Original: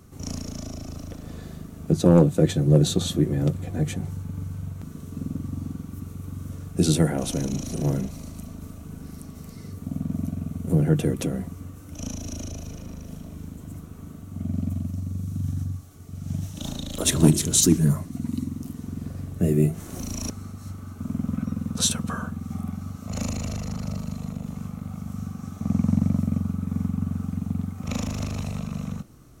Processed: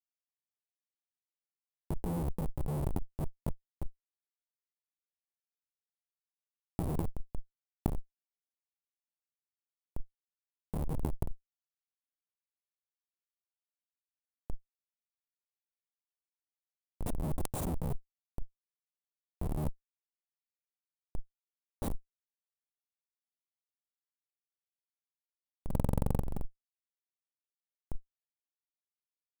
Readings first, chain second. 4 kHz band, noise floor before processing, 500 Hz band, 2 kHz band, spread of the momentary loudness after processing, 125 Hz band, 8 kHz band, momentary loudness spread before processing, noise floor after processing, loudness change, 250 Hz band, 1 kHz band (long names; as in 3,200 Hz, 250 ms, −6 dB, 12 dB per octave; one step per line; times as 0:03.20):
−29.0 dB, −42 dBFS, −17.5 dB, −19.5 dB, 17 LU, −16.5 dB, −26.0 dB, 20 LU, below −85 dBFS, −12.5 dB, −19.0 dB, −9.0 dB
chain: comparator with hysteresis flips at −16.5 dBFS
compressor whose output falls as the input rises −37 dBFS, ratio −1
flat-topped bell 3,000 Hz −14 dB 2.7 octaves
level +6 dB